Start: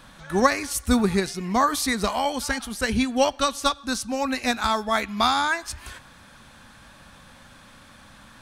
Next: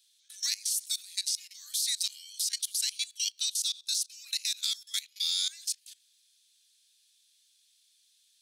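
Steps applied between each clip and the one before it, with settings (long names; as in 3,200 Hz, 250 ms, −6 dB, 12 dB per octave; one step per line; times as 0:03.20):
noise gate −37 dBFS, range −13 dB
inverse Chebyshev high-pass filter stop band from 840 Hz, stop band 70 dB
output level in coarse steps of 19 dB
level +8.5 dB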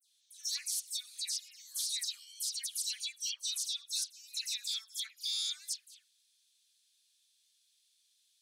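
all-pass dispersion lows, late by 138 ms, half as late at 2,600 Hz
level −5.5 dB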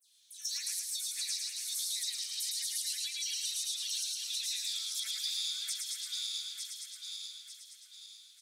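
feedback delay that plays each chunk backwards 448 ms, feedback 60%, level −6 dB
downward compressor, threshold −40 dBFS, peak gain reduction 9.5 dB
on a send: echo with shifted repeats 110 ms, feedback 45%, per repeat −37 Hz, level −3 dB
on the sum: level +5 dB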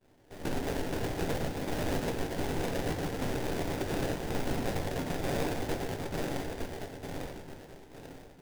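sample-rate reduction 1,200 Hz, jitter 20%
rectangular room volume 42 cubic metres, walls mixed, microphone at 0.35 metres
level +2 dB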